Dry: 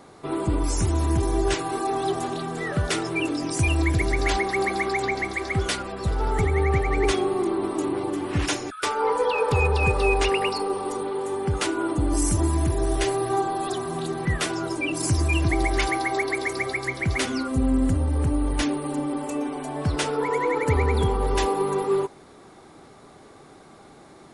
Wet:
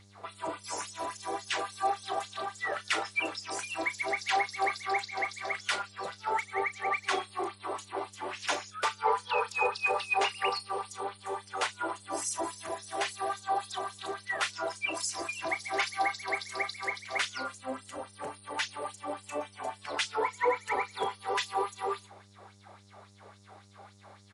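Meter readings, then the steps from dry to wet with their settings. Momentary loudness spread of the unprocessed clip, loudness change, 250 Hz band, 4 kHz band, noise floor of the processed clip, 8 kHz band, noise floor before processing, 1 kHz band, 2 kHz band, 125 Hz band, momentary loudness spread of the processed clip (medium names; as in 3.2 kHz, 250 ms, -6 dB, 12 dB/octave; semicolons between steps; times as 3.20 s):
6 LU, -8.5 dB, -20.0 dB, -4.0 dB, -57 dBFS, -7.0 dB, -49 dBFS, -4.0 dB, -4.5 dB, -29.5 dB, 10 LU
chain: treble shelf 9.7 kHz -11 dB; LFO high-pass sine 3.6 Hz 560–6200 Hz; mains buzz 100 Hz, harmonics 37, -53 dBFS -9 dB/octave; doubling 35 ms -12.5 dB; trim -5 dB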